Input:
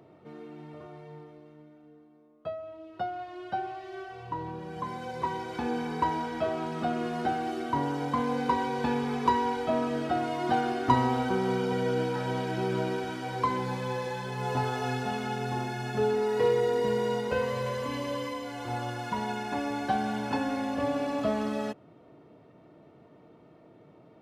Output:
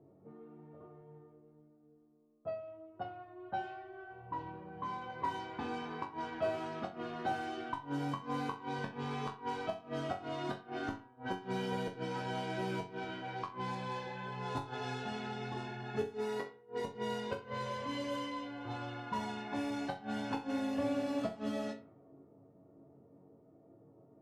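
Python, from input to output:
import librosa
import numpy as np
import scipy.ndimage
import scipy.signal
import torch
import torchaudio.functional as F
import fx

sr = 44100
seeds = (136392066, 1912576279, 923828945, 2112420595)

y = fx.gate_flip(x, sr, shuts_db=-18.0, range_db=-26)
y = fx.resonator_bank(y, sr, root=42, chord='minor', decay_s=0.35)
y = fx.env_lowpass(y, sr, base_hz=550.0, full_db=-41.5)
y = y * librosa.db_to_amplitude(8.5)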